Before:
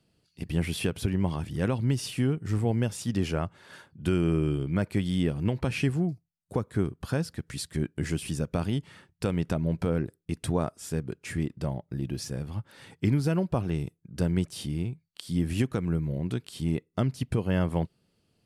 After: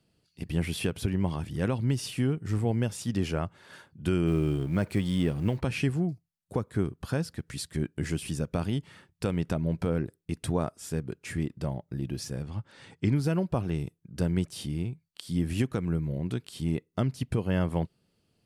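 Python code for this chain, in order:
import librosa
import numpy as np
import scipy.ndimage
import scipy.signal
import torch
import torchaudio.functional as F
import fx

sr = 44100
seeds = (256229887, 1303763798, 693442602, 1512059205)

y = fx.law_mismatch(x, sr, coded='mu', at=(4.26, 5.59), fade=0.02)
y = fx.lowpass(y, sr, hz=8700.0, slope=24, at=(12.42, 13.16))
y = y * librosa.db_to_amplitude(-1.0)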